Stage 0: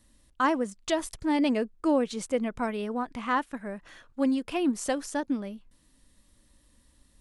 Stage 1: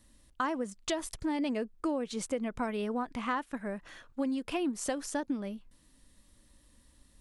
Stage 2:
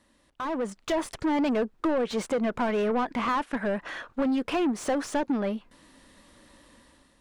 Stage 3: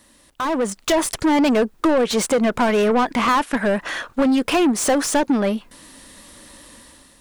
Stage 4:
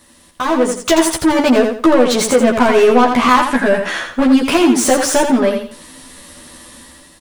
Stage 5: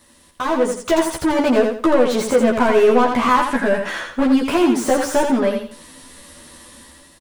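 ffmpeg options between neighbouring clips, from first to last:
-af "acompressor=threshold=-29dB:ratio=6"
-filter_complex "[0:a]asplit=2[a][b];[b]highpass=f=720:p=1,volume=25dB,asoftclip=type=tanh:threshold=-18.5dB[c];[a][c]amix=inputs=2:normalize=0,lowpass=f=1.2k:p=1,volume=-6dB,dynaudnorm=f=160:g=7:m=10dB,volume=-8.5dB"
-af "crystalizer=i=2:c=0,volume=8.5dB"
-filter_complex "[0:a]asplit=2[a][b];[b]adelay=12,volume=-2dB[c];[a][c]amix=inputs=2:normalize=0,asplit=2[d][e];[e]aecho=0:1:84|168|252|336:0.473|0.132|0.0371|0.0104[f];[d][f]amix=inputs=2:normalize=0,volume=3dB"
-filter_complex "[0:a]acrossover=split=1900[a][b];[a]asplit=2[c][d];[d]adelay=14,volume=-11.5dB[e];[c][e]amix=inputs=2:normalize=0[f];[b]asoftclip=type=tanh:threshold=-24dB[g];[f][g]amix=inputs=2:normalize=0,volume=-4dB"

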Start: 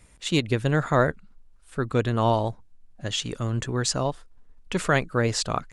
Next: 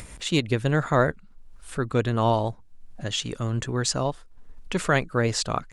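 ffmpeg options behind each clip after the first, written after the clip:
-af "acompressor=mode=upward:threshold=-30dB:ratio=2.5"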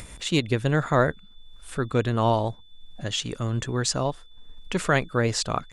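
-af "aeval=exprs='val(0)+0.00178*sin(2*PI*3500*n/s)':c=same"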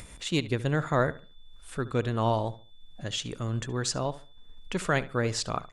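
-filter_complex "[0:a]asplit=2[a][b];[b]adelay=71,lowpass=f=3.2k:p=1,volume=-16.5dB,asplit=2[c][d];[d]adelay=71,lowpass=f=3.2k:p=1,volume=0.29,asplit=2[e][f];[f]adelay=71,lowpass=f=3.2k:p=1,volume=0.29[g];[a][c][e][g]amix=inputs=4:normalize=0,volume=-4.5dB"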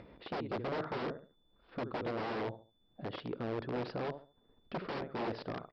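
-af "aresample=11025,aeval=exprs='(mod(20*val(0)+1,2)-1)/20':c=same,aresample=44100,bandpass=f=400:t=q:w=0.91:csg=0,asoftclip=type=tanh:threshold=-29dB,volume=2dB"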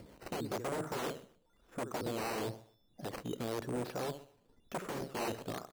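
-filter_complex "[0:a]acrossover=split=440[a][b];[a]aeval=exprs='val(0)*(1-0.5/2+0.5/2*cos(2*PI*2.4*n/s))':c=same[c];[b]aeval=exprs='val(0)*(1-0.5/2-0.5/2*cos(2*PI*2.4*n/s))':c=same[d];[c][d]amix=inputs=2:normalize=0,acrusher=samples=9:mix=1:aa=0.000001:lfo=1:lforange=9:lforate=0.99,aecho=1:1:126|252:0.0891|0.0241,volume=2dB"

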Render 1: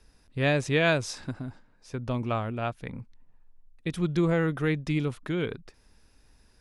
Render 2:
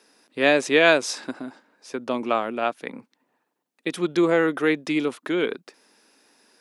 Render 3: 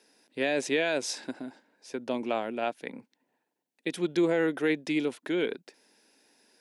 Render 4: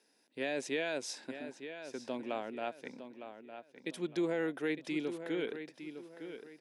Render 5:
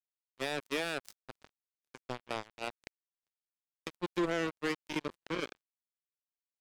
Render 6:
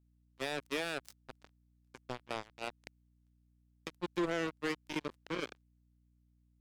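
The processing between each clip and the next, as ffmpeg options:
-af "highpass=f=260:w=0.5412,highpass=f=260:w=1.3066,volume=7.5dB"
-af "equalizer=f=1.2k:w=4.6:g=-12,alimiter=limit=-12.5dB:level=0:latency=1:release=13,volume=-4.5dB"
-filter_complex "[0:a]asplit=2[a][b];[b]adelay=908,lowpass=f=4.7k:p=1,volume=-10dB,asplit=2[c][d];[d]adelay=908,lowpass=f=4.7k:p=1,volume=0.32,asplit=2[e][f];[f]adelay=908,lowpass=f=4.7k:p=1,volume=0.32,asplit=2[g][h];[h]adelay=908,lowpass=f=4.7k:p=1,volume=0.32[i];[a][c][e][g][i]amix=inputs=5:normalize=0,volume=-8dB"
-af "acrusher=bits=4:mix=0:aa=0.5"
-af "aeval=exprs='val(0)+0.000447*(sin(2*PI*60*n/s)+sin(2*PI*2*60*n/s)/2+sin(2*PI*3*60*n/s)/3+sin(2*PI*4*60*n/s)/4+sin(2*PI*5*60*n/s)/5)':c=same,volume=-2dB"

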